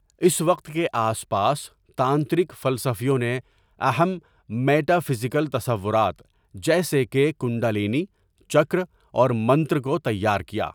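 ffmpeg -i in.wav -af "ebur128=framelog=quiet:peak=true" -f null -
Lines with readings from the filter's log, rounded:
Integrated loudness:
  I:         -23.1 LUFS
  Threshold: -33.4 LUFS
Loudness range:
  LRA:         1.3 LU
  Threshold: -43.6 LUFS
  LRA low:   -24.2 LUFS
  LRA high:  -22.9 LUFS
True peak:
  Peak:       -5.7 dBFS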